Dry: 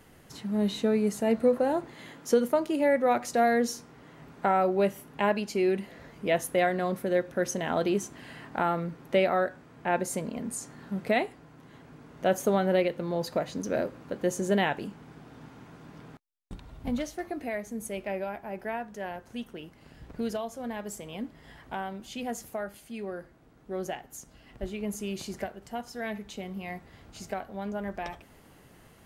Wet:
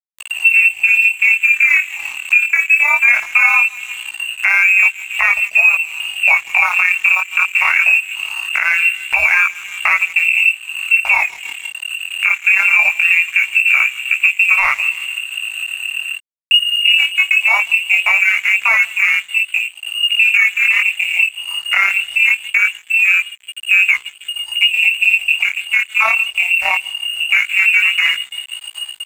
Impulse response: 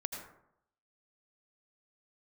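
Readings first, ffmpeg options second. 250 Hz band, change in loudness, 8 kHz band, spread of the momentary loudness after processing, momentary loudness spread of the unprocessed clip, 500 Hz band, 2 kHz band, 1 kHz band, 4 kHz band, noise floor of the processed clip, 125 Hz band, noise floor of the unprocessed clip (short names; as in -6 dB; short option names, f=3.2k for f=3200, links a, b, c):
under -25 dB, +18.0 dB, +9.5 dB, 11 LU, 18 LU, under -10 dB, +28.0 dB, +6.5 dB, +26.0 dB, -38 dBFS, under -15 dB, -56 dBFS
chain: -filter_complex "[0:a]asubboost=boost=2.5:cutoff=100,afwtdn=0.0112,tremolo=f=35:d=0.571,asplit=2[a][b];[b]adelay=160,lowpass=f=1.4k:p=1,volume=-23.5dB,asplit=2[c][d];[d]adelay=160,lowpass=f=1.4k:p=1,volume=0.51,asplit=2[e][f];[f]adelay=160,lowpass=f=1.4k:p=1,volume=0.51[g];[c][e][g]amix=inputs=3:normalize=0[h];[a][h]amix=inputs=2:normalize=0,acompressor=threshold=-36dB:ratio=8,lowpass=f=2.5k:t=q:w=0.5098,lowpass=f=2.5k:t=q:w=0.6013,lowpass=f=2.5k:t=q:w=0.9,lowpass=f=2.5k:t=q:w=2.563,afreqshift=-2900,afftfilt=real='re*(1-between(b*sr/4096,100,550))':imag='im*(1-between(b*sr/4096,100,550))':win_size=4096:overlap=0.75,aeval=exprs='sgn(val(0))*max(abs(val(0))-0.00106,0)':c=same,flanger=delay=15:depth=7.7:speed=0.21,acompressor=mode=upward:threshold=-48dB:ratio=2.5,equalizer=f=560:w=4.6:g=-5.5,alimiter=level_in=33.5dB:limit=-1dB:release=50:level=0:latency=1,volume=-1dB"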